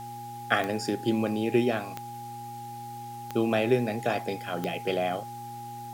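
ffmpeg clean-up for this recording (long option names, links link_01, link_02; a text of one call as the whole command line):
ffmpeg -i in.wav -af "adeclick=threshold=4,bandreject=frequency=118.6:width_type=h:width=4,bandreject=frequency=237.2:width_type=h:width=4,bandreject=frequency=355.8:width_type=h:width=4,bandreject=frequency=820:width=30,afwtdn=0.0022" out.wav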